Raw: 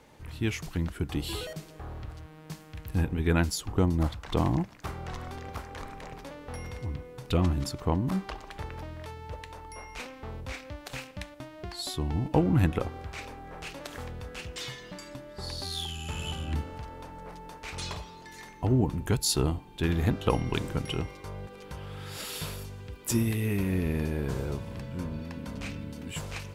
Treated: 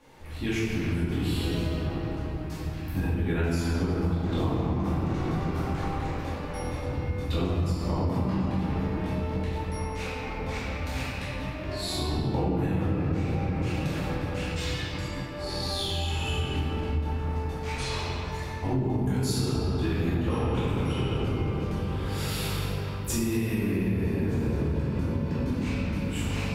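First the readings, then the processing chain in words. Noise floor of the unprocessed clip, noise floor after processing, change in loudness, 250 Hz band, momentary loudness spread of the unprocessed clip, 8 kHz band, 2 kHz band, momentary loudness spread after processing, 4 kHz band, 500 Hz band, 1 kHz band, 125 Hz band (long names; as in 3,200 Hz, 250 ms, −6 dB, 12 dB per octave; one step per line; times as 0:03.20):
−49 dBFS, −34 dBFS, +2.5 dB, +3.5 dB, 16 LU, −2.0 dB, +3.0 dB, 6 LU, +2.0 dB, +3.0 dB, +3.0 dB, +3.5 dB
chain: rectangular room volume 220 cubic metres, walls hard, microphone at 2.3 metres
downward compressor, threshold −17 dBFS, peak gain reduction 11 dB
level −6.5 dB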